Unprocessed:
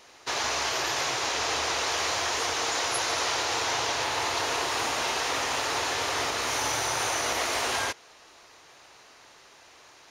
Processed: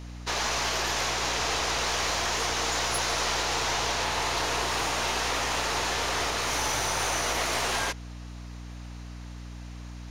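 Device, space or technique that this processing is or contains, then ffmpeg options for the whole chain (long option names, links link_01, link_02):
valve amplifier with mains hum: -af "aeval=exprs='(tanh(11.2*val(0)+0.4)-tanh(0.4))/11.2':channel_layout=same,aeval=exprs='val(0)+0.00891*(sin(2*PI*60*n/s)+sin(2*PI*2*60*n/s)/2+sin(2*PI*3*60*n/s)/3+sin(2*PI*4*60*n/s)/4+sin(2*PI*5*60*n/s)/5)':channel_layout=same,volume=2dB"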